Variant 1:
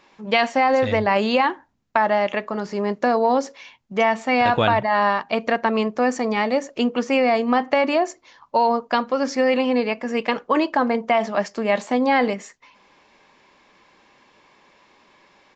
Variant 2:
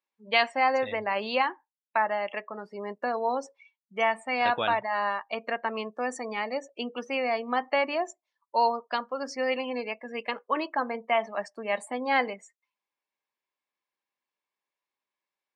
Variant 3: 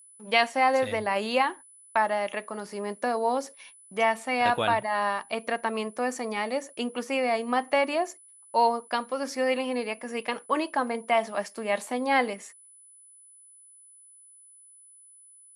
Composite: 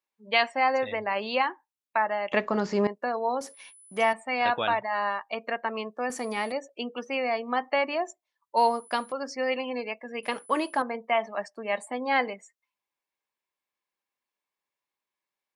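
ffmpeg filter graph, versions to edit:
-filter_complex "[2:a]asplit=4[a][b][c][d];[1:a]asplit=6[e][f][g][h][i][j];[e]atrim=end=2.322[k];[0:a]atrim=start=2.318:end=2.872[l];[f]atrim=start=2.868:end=3.412[m];[a]atrim=start=3.408:end=4.132[n];[g]atrim=start=4.128:end=6.102[o];[b]atrim=start=6.098:end=6.522[p];[h]atrim=start=6.518:end=8.572[q];[c]atrim=start=8.568:end=9.122[r];[i]atrim=start=9.118:end=10.232[s];[d]atrim=start=10.228:end=10.822[t];[j]atrim=start=10.818[u];[k][l]acrossfade=d=0.004:c1=hsin:c2=hsin[v];[v][m]acrossfade=d=0.004:c1=hsin:c2=hsin[w];[w][n]acrossfade=d=0.004:c1=hsin:c2=hsin[x];[x][o]acrossfade=d=0.004:c1=hsin:c2=hsin[y];[y][p]acrossfade=d=0.004:c1=hsin:c2=hsin[z];[z][q]acrossfade=d=0.004:c1=hsin:c2=hsin[aa];[aa][r]acrossfade=d=0.004:c1=hsin:c2=hsin[ab];[ab][s]acrossfade=d=0.004:c1=hsin:c2=hsin[ac];[ac][t]acrossfade=d=0.004:c1=hsin:c2=hsin[ad];[ad][u]acrossfade=d=0.004:c1=hsin:c2=hsin"

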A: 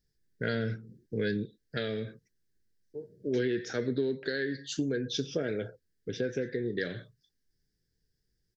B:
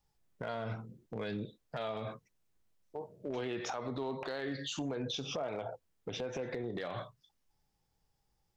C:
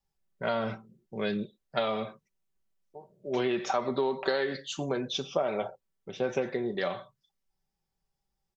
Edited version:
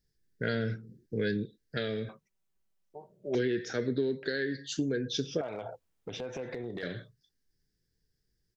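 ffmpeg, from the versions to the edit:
-filter_complex "[0:a]asplit=3[a][b][c];[a]atrim=end=2.092[d];[2:a]atrim=start=2.088:end=3.352[e];[b]atrim=start=3.348:end=5.412[f];[1:a]atrim=start=5.408:end=6.832[g];[c]atrim=start=6.828[h];[d][e]acrossfade=d=0.004:c1=hsin:c2=hsin[i];[i][f]acrossfade=d=0.004:c1=hsin:c2=hsin[j];[j][g]acrossfade=d=0.004:c1=hsin:c2=hsin[k];[k][h]acrossfade=d=0.004:c1=hsin:c2=hsin"

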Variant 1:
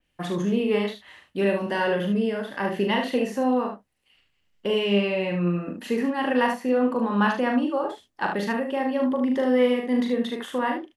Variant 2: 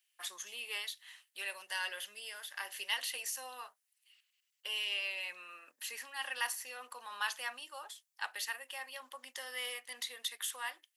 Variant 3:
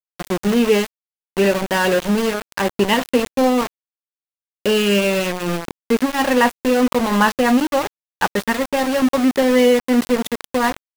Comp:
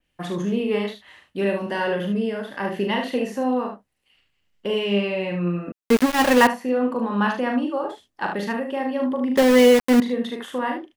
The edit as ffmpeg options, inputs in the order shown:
-filter_complex "[2:a]asplit=2[a][b];[0:a]asplit=3[c][d][e];[c]atrim=end=5.722[f];[a]atrim=start=5.718:end=6.472[g];[d]atrim=start=6.468:end=9.372[h];[b]atrim=start=9.368:end=10.002[i];[e]atrim=start=9.998[j];[f][g]acrossfade=d=0.004:c1=hsin:c2=hsin[k];[k][h]acrossfade=d=0.004:c1=hsin:c2=hsin[l];[l][i]acrossfade=d=0.004:c1=hsin:c2=hsin[m];[m][j]acrossfade=d=0.004:c1=hsin:c2=hsin"

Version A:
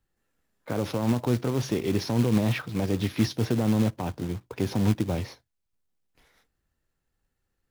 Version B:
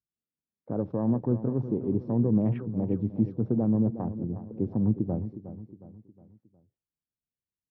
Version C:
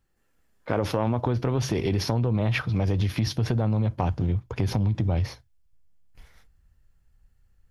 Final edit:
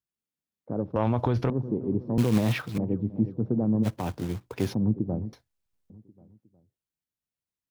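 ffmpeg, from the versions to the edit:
-filter_complex "[0:a]asplit=3[a][b][c];[1:a]asplit=5[d][e][f][g][h];[d]atrim=end=0.962[i];[2:a]atrim=start=0.958:end=1.502[j];[e]atrim=start=1.498:end=2.182[k];[a]atrim=start=2.178:end=2.782[l];[f]atrim=start=2.778:end=3.87[m];[b]atrim=start=3.83:end=4.75[n];[g]atrim=start=4.71:end=5.332[o];[c]atrim=start=5.328:end=5.902[p];[h]atrim=start=5.898[q];[i][j]acrossfade=d=0.004:c1=hsin:c2=hsin[r];[r][k]acrossfade=d=0.004:c1=hsin:c2=hsin[s];[s][l]acrossfade=d=0.004:c1=hsin:c2=hsin[t];[t][m]acrossfade=d=0.004:c1=hsin:c2=hsin[u];[u][n]acrossfade=d=0.04:c1=tri:c2=tri[v];[v][o]acrossfade=d=0.04:c1=tri:c2=tri[w];[w][p]acrossfade=d=0.004:c1=hsin:c2=hsin[x];[x][q]acrossfade=d=0.004:c1=hsin:c2=hsin"

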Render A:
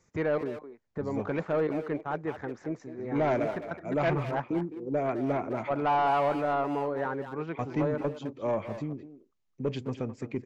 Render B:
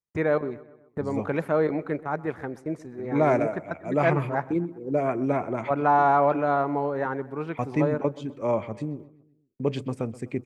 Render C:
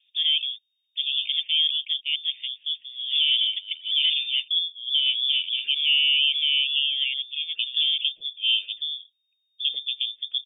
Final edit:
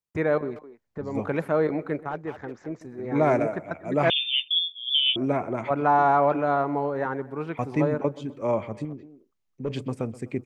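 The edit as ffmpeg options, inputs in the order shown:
-filter_complex "[0:a]asplit=3[a][b][c];[1:a]asplit=5[d][e][f][g][h];[d]atrim=end=0.562[i];[a]atrim=start=0.558:end=1.152[j];[e]atrim=start=1.148:end=2.092[k];[b]atrim=start=2.088:end=2.812[l];[f]atrim=start=2.808:end=4.102[m];[2:a]atrim=start=4.098:end=5.162[n];[g]atrim=start=5.158:end=8.852[o];[c]atrim=start=8.848:end=9.702[p];[h]atrim=start=9.698[q];[i][j]acrossfade=d=0.004:c1=hsin:c2=hsin[r];[r][k]acrossfade=d=0.004:c1=hsin:c2=hsin[s];[s][l]acrossfade=d=0.004:c1=hsin:c2=hsin[t];[t][m]acrossfade=d=0.004:c1=hsin:c2=hsin[u];[u][n]acrossfade=d=0.004:c1=hsin:c2=hsin[v];[v][o]acrossfade=d=0.004:c1=hsin:c2=hsin[w];[w][p]acrossfade=d=0.004:c1=hsin:c2=hsin[x];[x][q]acrossfade=d=0.004:c1=hsin:c2=hsin"

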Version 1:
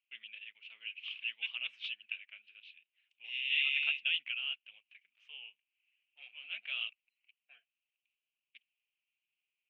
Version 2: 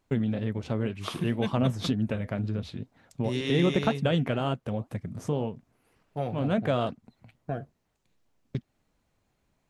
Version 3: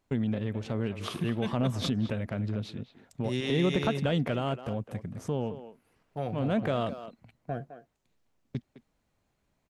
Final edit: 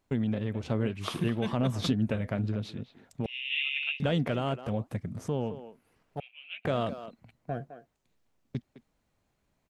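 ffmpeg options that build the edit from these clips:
-filter_complex "[1:a]asplit=3[a][b][c];[0:a]asplit=2[d][e];[2:a]asplit=6[f][g][h][i][j][k];[f]atrim=end=0.602[l];[a]atrim=start=0.598:end=1.282[m];[g]atrim=start=1.278:end=1.812[n];[b]atrim=start=1.808:end=2.522[o];[h]atrim=start=2.518:end=3.262[p];[d]atrim=start=3.258:end=4.002[q];[i]atrim=start=3.998:end=4.692[r];[c]atrim=start=4.688:end=5.182[s];[j]atrim=start=5.178:end=6.202[t];[e]atrim=start=6.198:end=6.652[u];[k]atrim=start=6.648[v];[l][m]acrossfade=d=0.004:c1=hsin:c2=hsin[w];[w][n]acrossfade=d=0.004:c1=hsin:c2=hsin[x];[x][o]acrossfade=d=0.004:c1=hsin:c2=hsin[y];[y][p]acrossfade=d=0.004:c1=hsin:c2=hsin[z];[z][q]acrossfade=d=0.004:c1=hsin:c2=hsin[aa];[aa][r]acrossfade=d=0.004:c1=hsin:c2=hsin[ab];[ab][s]acrossfade=d=0.004:c1=hsin:c2=hsin[ac];[ac][t]acrossfade=d=0.004:c1=hsin:c2=hsin[ad];[ad][u]acrossfade=d=0.004:c1=hsin:c2=hsin[ae];[ae][v]acrossfade=d=0.004:c1=hsin:c2=hsin"

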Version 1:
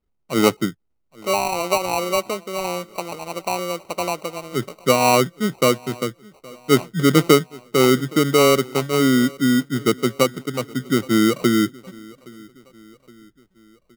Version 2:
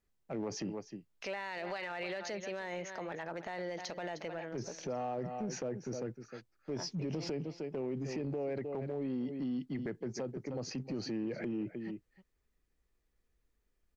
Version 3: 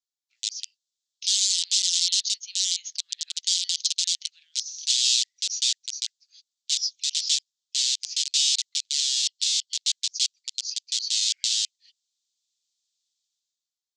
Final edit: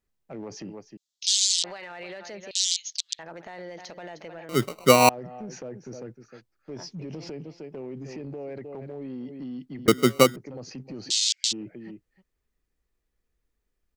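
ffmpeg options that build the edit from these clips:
-filter_complex "[2:a]asplit=3[a][b][c];[0:a]asplit=2[d][e];[1:a]asplit=6[f][g][h][i][j][k];[f]atrim=end=0.972[l];[a]atrim=start=0.968:end=1.642[m];[g]atrim=start=1.638:end=2.512[n];[b]atrim=start=2.508:end=3.192[o];[h]atrim=start=3.188:end=4.492[p];[d]atrim=start=4.488:end=5.092[q];[i]atrim=start=5.088:end=9.882[r];[e]atrim=start=9.878:end=10.362[s];[j]atrim=start=10.358:end=11.11[t];[c]atrim=start=11.09:end=11.53[u];[k]atrim=start=11.51[v];[l][m]acrossfade=d=0.004:c1=hsin:c2=hsin[w];[w][n]acrossfade=d=0.004:c1=hsin:c2=hsin[x];[x][o]acrossfade=d=0.004:c1=hsin:c2=hsin[y];[y][p]acrossfade=d=0.004:c1=hsin:c2=hsin[z];[z][q]acrossfade=d=0.004:c1=hsin:c2=hsin[aa];[aa][r]acrossfade=d=0.004:c1=hsin:c2=hsin[ab];[ab][s]acrossfade=d=0.004:c1=hsin:c2=hsin[ac];[ac][t]acrossfade=d=0.004:c1=hsin:c2=hsin[ad];[ad][u]acrossfade=d=0.02:c1=tri:c2=tri[ae];[ae][v]acrossfade=d=0.02:c1=tri:c2=tri"

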